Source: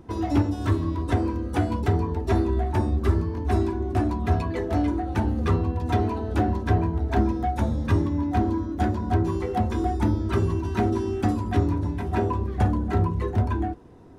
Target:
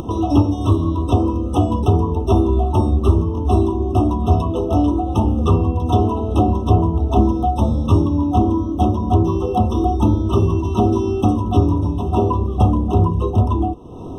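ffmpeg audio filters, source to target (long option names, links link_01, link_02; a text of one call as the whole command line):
ffmpeg -i in.wav -af "acompressor=mode=upward:threshold=-26dB:ratio=2.5,afftfilt=real='re*eq(mod(floor(b*sr/1024/1300),2),0)':imag='im*eq(mod(floor(b*sr/1024/1300),2),0)':win_size=1024:overlap=0.75,volume=7.5dB" out.wav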